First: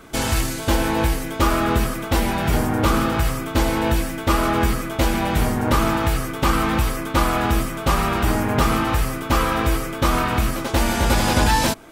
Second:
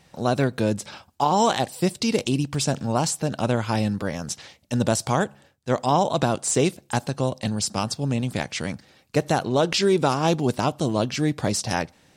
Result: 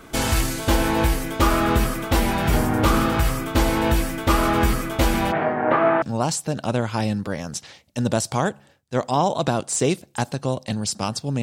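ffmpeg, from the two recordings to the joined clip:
ffmpeg -i cue0.wav -i cue1.wav -filter_complex "[0:a]asplit=3[link_01][link_02][link_03];[link_01]afade=type=out:start_time=5.31:duration=0.02[link_04];[link_02]highpass=frequency=170:width=0.5412,highpass=frequency=170:width=1.3066,equalizer=frequency=220:width_type=q:width=4:gain=-10,equalizer=frequency=670:width_type=q:width=4:gain=10,equalizer=frequency=1700:width_type=q:width=4:gain=4,lowpass=frequency=2300:width=0.5412,lowpass=frequency=2300:width=1.3066,afade=type=in:start_time=5.31:duration=0.02,afade=type=out:start_time=6.02:duration=0.02[link_05];[link_03]afade=type=in:start_time=6.02:duration=0.02[link_06];[link_04][link_05][link_06]amix=inputs=3:normalize=0,apad=whole_dur=11.42,atrim=end=11.42,atrim=end=6.022[link_07];[1:a]atrim=start=2.768:end=8.17[link_08];[link_07][link_08]acrossfade=duration=0.004:curve1=hsin:curve2=hsin" out.wav

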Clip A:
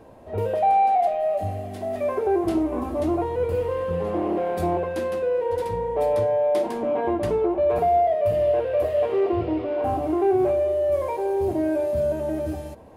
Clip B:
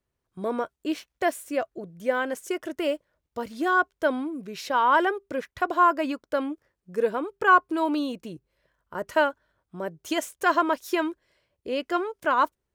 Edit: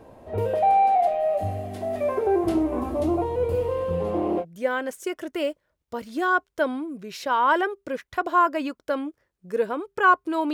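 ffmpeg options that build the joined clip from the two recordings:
ffmpeg -i cue0.wav -i cue1.wav -filter_complex "[0:a]asettb=1/sr,asplit=3[link_01][link_02][link_03];[link_01]atrim=end=2.974[link_04];[link_02]atrim=start=2.97:end=4.45,asetpts=PTS-STARTPTS,afade=type=in:duration=0.004:curve=qsin,afade=type=out:start_time=1.476:duration=0.004:curve=qsin,equalizer=frequency=1700:width=2:gain=-6[link_05];[link_03]atrim=start=4.446[link_06];[link_04][link_05]acrossfade=duration=0.004:curve1=hsin:curve2=qsin[link_07];[link_07][link_06]acrossfade=duration=0.004:curve1=qsin:curve2=hsin,apad=whole_dur=10.53,atrim=end=10.53,atrim=end=4.45,asetpts=PTS-STARTPTS[link_08];[1:a]atrim=start=1.83:end=7.97,asetpts=PTS-STARTPTS[link_09];[link_08][link_09]acrossfade=duration=0.06:curve1=tri:curve2=tri" out.wav

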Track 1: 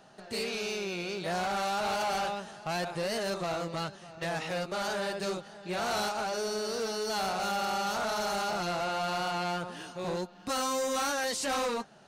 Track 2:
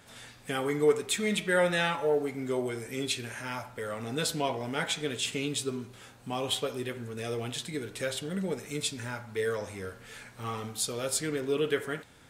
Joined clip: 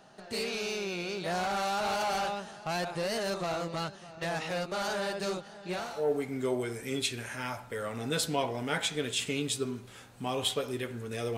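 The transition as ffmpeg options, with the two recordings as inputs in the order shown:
ffmpeg -i cue0.wav -i cue1.wav -filter_complex "[0:a]apad=whole_dur=11.37,atrim=end=11.37,atrim=end=6.12,asetpts=PTS-STARTPTS[link_01];[1:a]atrim=start=1.78:end=7.43,asetpts=PTS-STARTPTS[link_02];[link_01][link_02]acrossfade=duration=0.4:curve1=qua:curve2=qua" out.wav

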